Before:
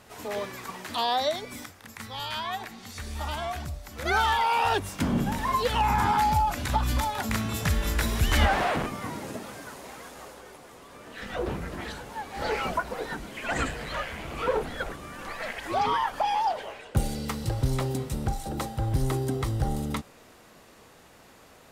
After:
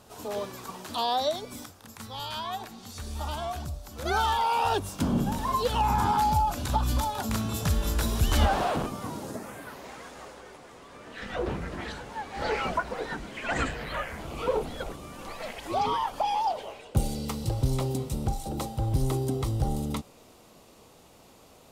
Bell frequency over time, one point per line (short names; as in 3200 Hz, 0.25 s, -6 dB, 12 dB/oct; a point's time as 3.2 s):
bell -11 dB 0.71 oct
9.24 s 2000 Hz
9.91 s 13000 Hz
13.68 s 13000 Hz
14.33 s 1700 Hz